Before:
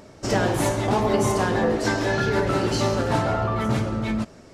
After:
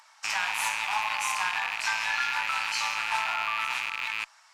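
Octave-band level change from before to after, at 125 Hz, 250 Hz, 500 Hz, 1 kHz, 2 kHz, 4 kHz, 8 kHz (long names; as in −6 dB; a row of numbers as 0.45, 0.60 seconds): below −35 dB, below −35 dB, −28.0 dB, −3.5 dB, +2.5 dB, +1.5 dB, −2.0 dB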